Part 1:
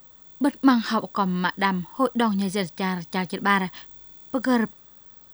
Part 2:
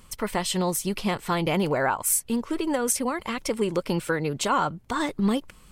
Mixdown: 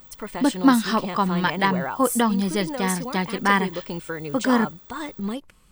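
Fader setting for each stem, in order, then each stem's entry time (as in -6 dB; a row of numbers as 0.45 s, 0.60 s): +1.5 dB, -5.5 dB; 0.00 s, 0.00 s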